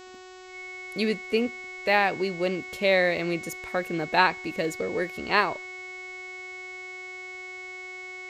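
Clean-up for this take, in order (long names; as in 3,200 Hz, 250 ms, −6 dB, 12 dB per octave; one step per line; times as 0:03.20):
hum removal 370 Hz, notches 21
notch filter 2,200 Hz, Q 30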